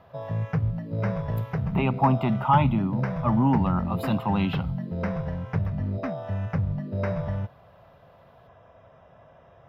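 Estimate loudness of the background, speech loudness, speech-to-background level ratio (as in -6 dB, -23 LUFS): -30.0 LUFS, -25.0 LUFS, 5.0 dB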